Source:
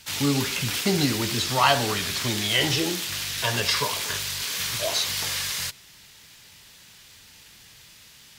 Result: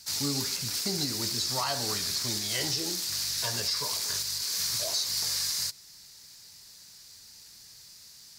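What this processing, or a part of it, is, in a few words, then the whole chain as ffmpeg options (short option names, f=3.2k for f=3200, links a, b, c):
over-bright horn tweeter: -af "highshelf=f=3.8k:t=q:w=3:g=6.5,alimiter=limit=-10.5dB:level=0:latency=1:release=236,volume=-8dB"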